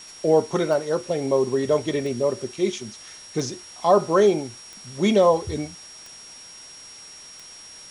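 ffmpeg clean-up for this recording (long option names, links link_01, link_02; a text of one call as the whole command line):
ffmpeg -i in.wav -af "adeclick=threshold=4,bandreject=frequency=5600:width=30,afwtdn=0.0056" out.wav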